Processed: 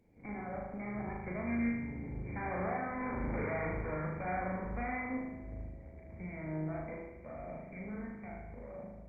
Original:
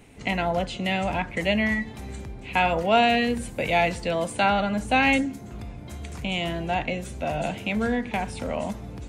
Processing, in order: Doppler pass-by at 3.18, 26 m/s, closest 3.2 m; bell 1300 Hz -14 dB 0.83 oct; in parallel at -2 dB: compressor 20:1, threshold -39 dBFS, peak gain reduction 15 dB; on the sum: overloaded stage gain 32 dB; tube stage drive 49 dB, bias 0.75; brick-wall FIR low-pass 2400 Hz; on a send: flutter echo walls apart 6.6 m, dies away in 1.1 s; on the sum: gain +11.5 dB; Opus 32 kbps 48000 Hz

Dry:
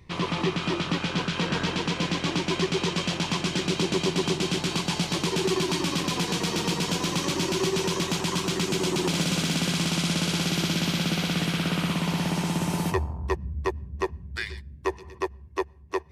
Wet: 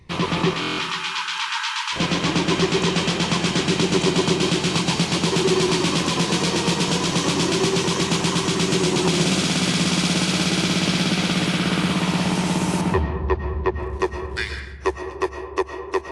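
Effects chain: in parallel at -8 dB: sample gate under -34.5 dBFS; 12.81–13.8 on the sum: Gaussian blur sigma 2.2 samples; vibrato 8.1 Hz 16 cents; 0.53–1.96 brick-wall FIR high-pass 830 Hz; on a send at -6 dB: reverb RT60 1.2 s, pre-delay 80 ms; on the sum: stuck buffer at 0.6, samples 1024, times 7; gain +2.5 dB; AAC 48 kbps 24000 Hz

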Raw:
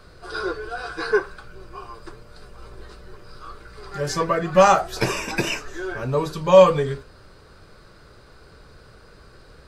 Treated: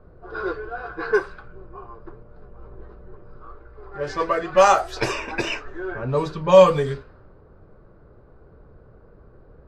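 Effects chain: low-pass opened by the level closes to 700 Hz, open at -15.5 dBFS; 3.47–5.66 bell 170 Hz -14 dB 0.63 oct

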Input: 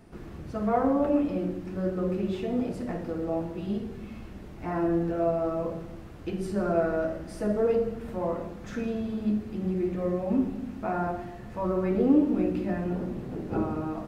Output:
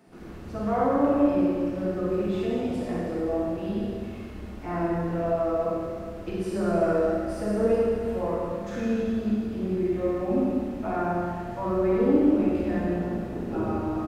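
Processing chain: bands offset in time highs, lows 70 ms, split 150 Hz; Schroeder reverb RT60 1.9 s, combs from 31 ms, DRR -4 dB; gain -2 dB

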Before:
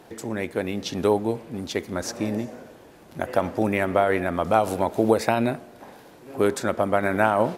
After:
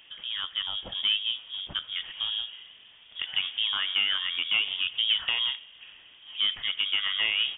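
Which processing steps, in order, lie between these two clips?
soft clip -11.5 dBFS, distortion -16 dB; inverted band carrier 3500 Hz; gain -4.5 dB

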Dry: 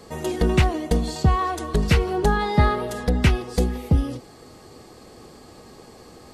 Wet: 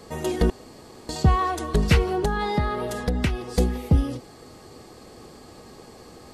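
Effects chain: 0.5–1.09 room tone; 2.12–3.56 compressor 6:1, threshold -20 dBFS, peak gain reduction 8.5 dB

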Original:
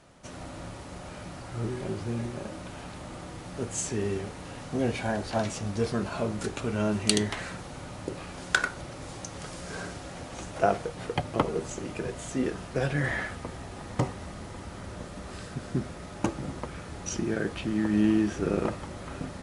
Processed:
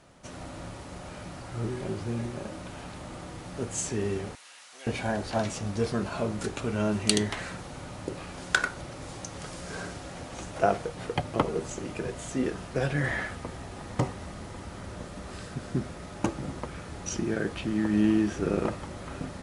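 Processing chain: 4.35–4.87 Bessel high-pass 2200 Hz, order 2

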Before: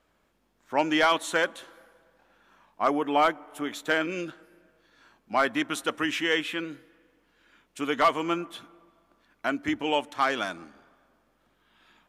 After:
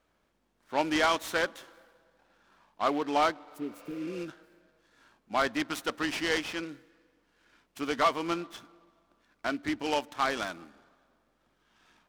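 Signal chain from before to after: spectral repair 3.48–4.19, 470–9400 Hz both; noise-modulated delay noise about 2100 Hz, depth 0.032 ms; gain -3.5 dB

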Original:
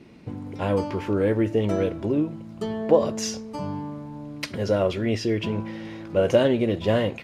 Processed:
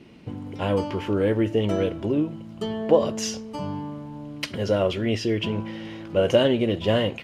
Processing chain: bell 3000 Hz +8.5 dB 0.21 oct

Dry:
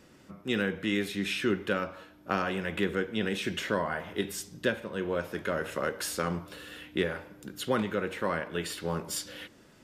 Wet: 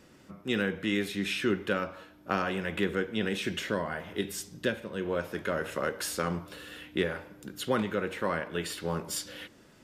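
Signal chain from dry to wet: 3.57–5.06 dynamic EQ 1000 Hz, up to -4 dB, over -42 dBFS, Q 0.86

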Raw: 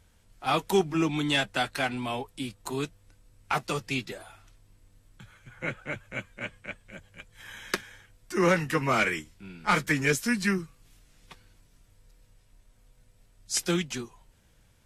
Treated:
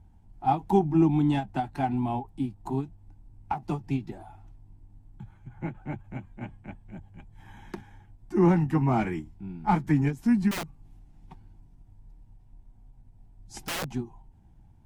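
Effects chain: EQ curve 140 Hz 0 dB, 350 Hz -3 dB, 520 Hz -21 dB, 810 Hz +1 dB, 1200 Hz -18 dB, 2700 Hz -22 dB, 3900 Hz -25 dB; 10.51–13.92 wrapped overs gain 35 dB; ending taper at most 230 dB/s; gain +8 dB

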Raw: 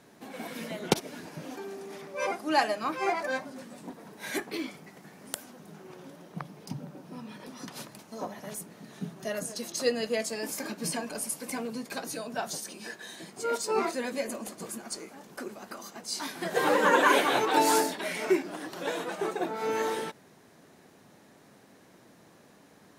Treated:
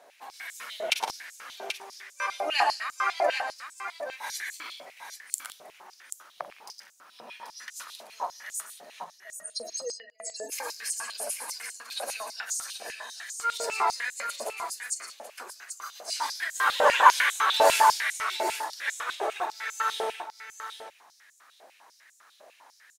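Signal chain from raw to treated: 9.04–10.52 spectral contrast raised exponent 2.6; tapped delay 41/108/117/158/178/783 ms -15.5/-13.5/-8.5/-15/-16.5/-8 dB; stepped high-pass 10 Hz 640–7100 Hz; gain -1 dB

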